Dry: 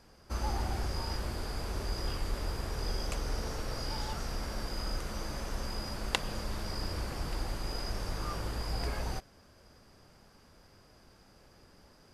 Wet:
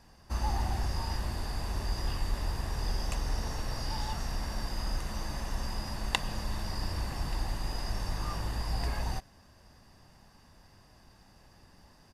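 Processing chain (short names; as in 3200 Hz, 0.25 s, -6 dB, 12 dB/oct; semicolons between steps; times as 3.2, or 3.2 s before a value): comb 1.1 ms, depth 44%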